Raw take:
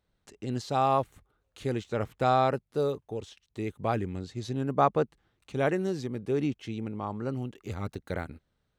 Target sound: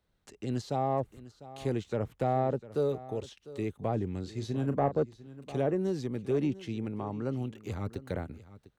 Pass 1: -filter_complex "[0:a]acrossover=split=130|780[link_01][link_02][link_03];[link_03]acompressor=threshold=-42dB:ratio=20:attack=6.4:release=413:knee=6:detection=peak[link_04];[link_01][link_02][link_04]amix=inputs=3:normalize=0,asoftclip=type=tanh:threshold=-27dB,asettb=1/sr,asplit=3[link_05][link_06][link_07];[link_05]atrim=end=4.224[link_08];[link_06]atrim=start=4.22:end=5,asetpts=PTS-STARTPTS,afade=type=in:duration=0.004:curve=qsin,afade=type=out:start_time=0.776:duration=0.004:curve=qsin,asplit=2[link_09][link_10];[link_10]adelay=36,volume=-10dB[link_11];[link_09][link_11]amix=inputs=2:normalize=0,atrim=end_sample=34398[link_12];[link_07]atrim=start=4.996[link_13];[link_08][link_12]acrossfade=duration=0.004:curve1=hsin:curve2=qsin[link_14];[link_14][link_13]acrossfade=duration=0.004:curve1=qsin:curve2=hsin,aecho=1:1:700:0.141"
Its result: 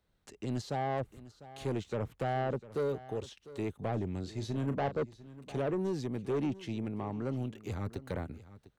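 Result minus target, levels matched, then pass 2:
soft clipping: distortion +13 dB
-filter_complex "[0:a]acrossover=split=130|780[link_01][link_02][link_03];[link_03]acompressor=threshold=-42dB:ratio=20:attack=6.4:release=413:knee=6:detection=peak[link_04];[link_01][link_02][link_04]amix=inputs=3:normalize=0,asoftclip=type=tanh:threshold=-16.5dB,asettb=1/sr,asplit=3[link_05][link_06][link_07];[link_05]atrim=end=4.224[link_08];[link_06]atrim=start=4.22:end=5,asetpts=PTS-STARTPTS,afade=type=in:duration=0.004:curve=qsin,afade=type=out:start_time=0.776:duration=0.004:curve=qsin,asplit=2[link_09][link_10];[link_10]adelay=36,volume=-10dB[link_11];[link_09][link_11]amix=inputs=2:normalize=0,atrim=end_sample=34398[link_12];[link_07]atrim=start=4.996[link_13];[link_08][link_12]acrossfade=duration=0.004:curve1=hsin:curve2=qsin[link_14];[link_14][link_13]acrossfade=duration=0.004:curve1=qsin:curve2=hsin,aecho=1:1:700:0.141"

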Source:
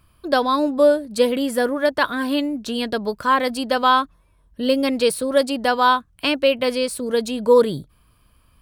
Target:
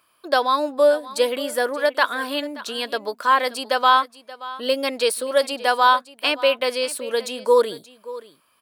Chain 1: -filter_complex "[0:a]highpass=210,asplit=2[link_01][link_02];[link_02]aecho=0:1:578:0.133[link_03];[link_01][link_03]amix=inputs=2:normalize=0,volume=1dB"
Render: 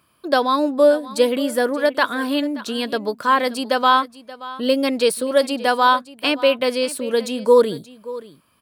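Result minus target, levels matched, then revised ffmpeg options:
250 Hz band +8.0 dB
-filter_complex "[0:a]highpass=510,asplit=2[link_01][link_02];[link_02]aecho=0:1:578:0.133[link_03];[link_01][link_03]amix=inputs=2:normalize=0,volume=1dB"

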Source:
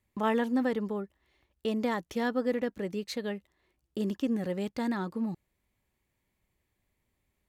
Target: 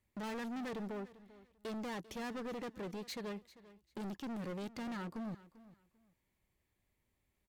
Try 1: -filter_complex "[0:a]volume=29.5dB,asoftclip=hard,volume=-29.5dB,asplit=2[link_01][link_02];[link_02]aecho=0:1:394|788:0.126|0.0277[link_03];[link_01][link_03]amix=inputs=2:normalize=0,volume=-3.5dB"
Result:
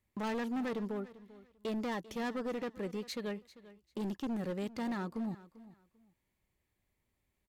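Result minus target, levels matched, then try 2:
gain into a clipping stage and back: distortion −4 dB
-filter_complex "[0:a]volume=36.5dB,asoftclip=hard,volume=-36.5dB,asplit=2[link_01][link_02];[link_02]aecho=0:1:394|788:0.126|0.0277[link_03];[link_01][link_03]amix=inputs=2:normalize=0,volume=-3.5dB"

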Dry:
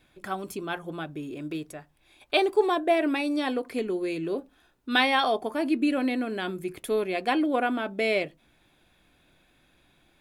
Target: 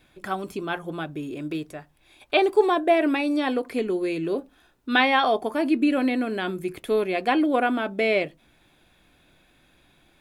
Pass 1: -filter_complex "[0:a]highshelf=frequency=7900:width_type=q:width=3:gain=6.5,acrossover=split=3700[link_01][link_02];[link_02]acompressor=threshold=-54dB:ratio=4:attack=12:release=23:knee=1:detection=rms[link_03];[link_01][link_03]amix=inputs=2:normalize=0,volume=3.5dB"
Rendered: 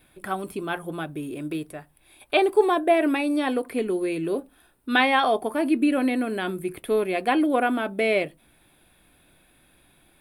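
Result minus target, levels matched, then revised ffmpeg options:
8,000 Hz band +6.0 dB
-filter_complex "[0:a]acrossover=split=3700[link_01][link_02];[link_02]acompressor=threshold=-54dB:ratio=4:attack=12:release=23:knee=1:detection=rms[link_03];[link_01][link_03]amix=inputs=2:normalize=0,volume=3.5dB"

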